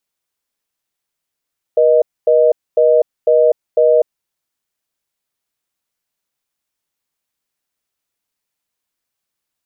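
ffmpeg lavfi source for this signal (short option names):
-f lavfi -i "aevalsrc='0.299*(sin(2*PI*480*t)+sin(2*PI*620*t))*clip(min(mod(t,0.5),0.25-mod(t,0.5))/0.005,0,1)':d=2.33:s=44100"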